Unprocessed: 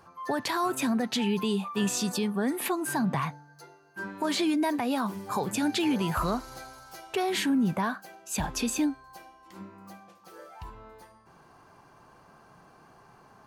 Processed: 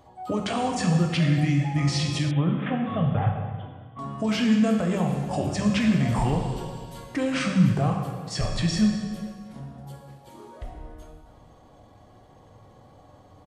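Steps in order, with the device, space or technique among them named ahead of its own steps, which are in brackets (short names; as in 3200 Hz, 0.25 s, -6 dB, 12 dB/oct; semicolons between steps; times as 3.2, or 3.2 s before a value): monster voice (pitch shift -6 st; low shelf 150 Hz +7.5 dB; reverb RT60 1.7 s, pre-delay 11 ms, DRR 1.5 dB); 2.31–3.99 Chebyshev low-pass 3600 Hz, order 8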